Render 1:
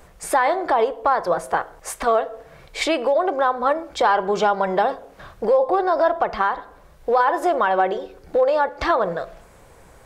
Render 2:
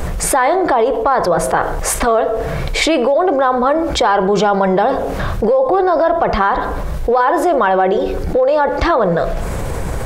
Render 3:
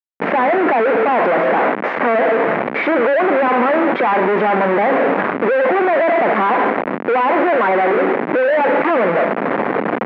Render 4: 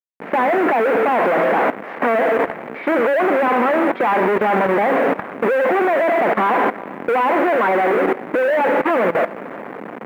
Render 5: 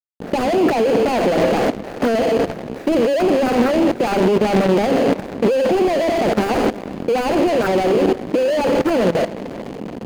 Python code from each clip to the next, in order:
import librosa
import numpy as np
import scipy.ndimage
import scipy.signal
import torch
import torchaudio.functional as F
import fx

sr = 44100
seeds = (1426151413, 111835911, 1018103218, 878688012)

y1 = fx.low_shelf(x, sr, hz=310.0, db=9.5)
y1 = fx.env_flatten(y1, sr, amount_pct=70)
y2 = fx.fade_in_head(y1, sr, length_s=1.47)
y2 = fx.schmitt(y2, sr, flips_db=-31.0)
y2 = scipy.signal.sosfilt(scipy.signal.ellip(3, 1.0, 60, [220.0, 2100.0], 'bandpass', fs=sr, output='sos'), y2)
y2 = y2 * librosa.db_to_amplitude(2.0)
y3 = fx.level_steps(y2, sr, step_db=16)
y3 = fx.quant_companded(y3, sr, bits=8)
y3 = y3 + 10.0 ** (-22.0 / 20.0) * np.pad(y3, (int(372 * sr / 1000.0), 0))[:len(y3)]
y4 = scipy.signal.medfilt(y3, 41)
y4 = y4 * librosa.db_to_amplitude(6.5)